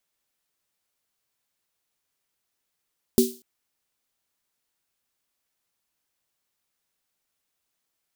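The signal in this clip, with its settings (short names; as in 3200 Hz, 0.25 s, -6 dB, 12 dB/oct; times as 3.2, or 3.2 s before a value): snare drum length 0.24 s, tones 240 Hz, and 380 Hz, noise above 3700 Hz, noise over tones -9.5 dB, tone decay 0.28 s, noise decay 0.38 s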